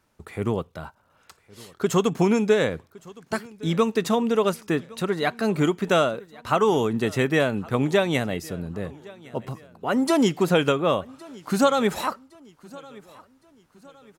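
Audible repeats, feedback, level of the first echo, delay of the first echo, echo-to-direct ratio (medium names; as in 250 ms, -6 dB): 2, 42%, -22.5 dB, 1113 ms, -21.5 dB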